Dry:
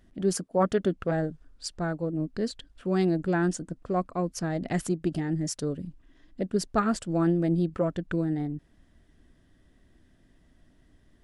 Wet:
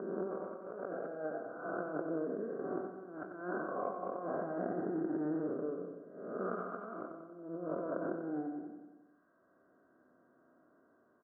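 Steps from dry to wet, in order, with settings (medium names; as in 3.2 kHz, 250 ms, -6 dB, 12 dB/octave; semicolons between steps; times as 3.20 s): spectral blur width 485 ms; high-pass 500 Hz 12 dB/octave; reverb removal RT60 1.3 s; steep low-pass 1.6 kHz 96 dB/octave; compressor with a negative ratio -47 dBFS, ratio -0.5; comb of notches 870 Hz; feedback delay 92 ms, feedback 60%, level -8 dB; trim +8 dB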